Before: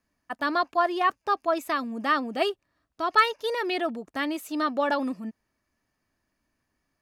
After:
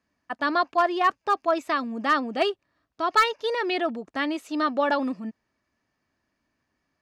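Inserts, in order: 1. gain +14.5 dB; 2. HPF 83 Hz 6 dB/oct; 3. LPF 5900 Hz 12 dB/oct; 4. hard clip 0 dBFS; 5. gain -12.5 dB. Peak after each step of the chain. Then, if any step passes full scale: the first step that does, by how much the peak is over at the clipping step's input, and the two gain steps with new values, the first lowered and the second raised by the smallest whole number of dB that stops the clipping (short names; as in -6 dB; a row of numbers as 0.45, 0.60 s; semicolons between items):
+6.5, +7.0, +7.0, 0.0, -12.5 dBFS; step 1, 7.0 dB; step 1 +7.5 dB, step 5 -5.5 dB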